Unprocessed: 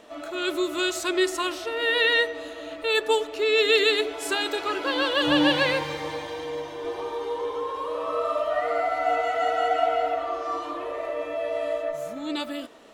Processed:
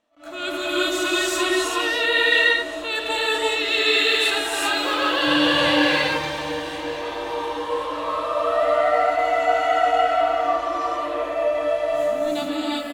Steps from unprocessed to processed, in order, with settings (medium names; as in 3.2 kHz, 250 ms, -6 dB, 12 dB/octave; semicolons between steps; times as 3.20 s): gate with hold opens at -27 dBFS; peaking EQ 420 Hz -14.5 dB 0.25 oct; in parallel at -2 dB: peak limiter -17.5 dBFS, peak gain reduction 8 dB; 3.68–4.92 s: on the sum: added noise white -56 dBFS; feedback delay 1063 ms, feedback 60%, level -18 dB; gated-style reverb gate 410 ms rising, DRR -6 dB; attacks held to a fixed rise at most 190 dB/s; trim -5.5 dB